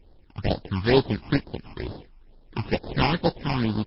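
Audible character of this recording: aliases and images of a low sample rate 1.3 kHz, jitter 20%; phasing stages 8, 2.2 Hz, lowest notch 490–2400 Hz; MP3

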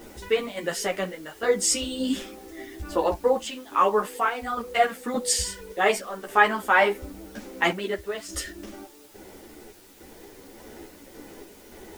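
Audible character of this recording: random-step tremolo, depth 85%; a quantiser's noise floor 10-bit, dither triangular; a shimmering, thickened sound

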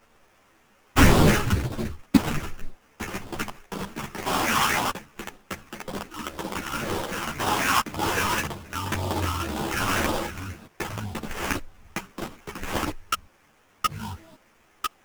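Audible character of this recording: a quantiser's noise floor 10-bit, dither triangular; phasing stages 12, 1.9 Hz, lowest notch 560–2200 Hz; aliases and images of a low sample rate 4.2 kHz, jitter 20%; a shimmering, thickened sound

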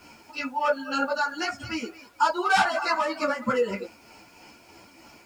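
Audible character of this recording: tremolo triangle 3.2 Hz, depth 50%; a quantiser's noise floor 10-bit, dither none; a shimmering, thickened sound

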